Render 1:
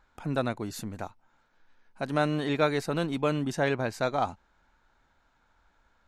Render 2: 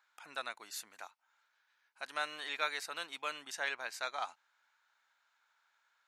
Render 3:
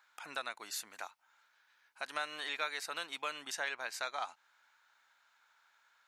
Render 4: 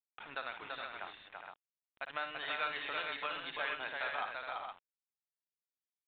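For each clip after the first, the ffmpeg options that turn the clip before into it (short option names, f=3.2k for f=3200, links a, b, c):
-af "highpass=1.4k,volume=-2dB"
-af "acompressor=threshold=-44dB:ratio=2,volume=5.5dB"
-filter_complex "[0:a]acrusher=bits=7:mix=0:aa=0.000001,asplit=2[a][b];[b]aecho=0:1:57|336|414|466:0.355|0.668|0.422|0.501[c];[a][c]amix=inputs=2:normalize=0,aresample=8000,aresample=44100,volume=-1.5dB"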